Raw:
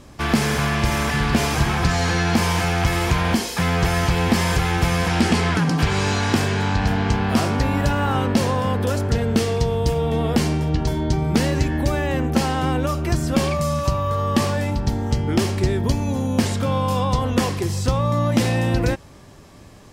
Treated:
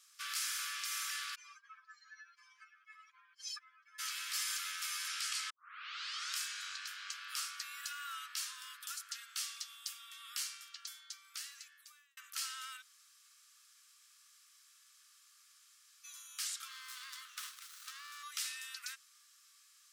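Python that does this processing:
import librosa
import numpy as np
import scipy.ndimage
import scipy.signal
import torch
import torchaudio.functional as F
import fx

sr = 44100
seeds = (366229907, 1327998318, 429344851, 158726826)

y = fx.spec_expand(x, sr, power=2.6, at=(1.34, 3.98), fade=0.02)
y = fx.running_max(y, sr, window=17, at=(16.68, 18.23))
y = fx.edit(y, sr, fx.tape_start(start_s=5.5, length_s=0.86),
    fx.fade_out_span(start_s=10.68, length_s=1.49),
    fx.room_tone_fill(start_s=12.82, length_s=3.22, crossfade_s=0.02), tone=tone)
y = scipy.signal.sosfilt(scipy.signal.butter(16, 1200.0, 'highpass', fs=sr, output='sos'), y)
y = fx.peak_eq(y, sr, hz=1800.0, db=-14.0, octaves=2.0)
y = y * librosa.db_to_amplitude(-4.5)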